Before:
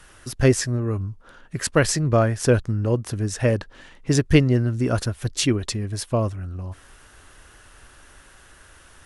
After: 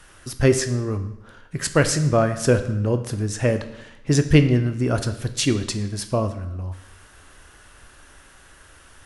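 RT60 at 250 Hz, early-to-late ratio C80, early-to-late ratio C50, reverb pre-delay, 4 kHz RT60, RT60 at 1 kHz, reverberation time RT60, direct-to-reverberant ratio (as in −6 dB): 0.90 s, 13.5 dB, 11.5 dB, 13 ms, 0.80 s, 0.90 s, 0.90 s, 8.5 dB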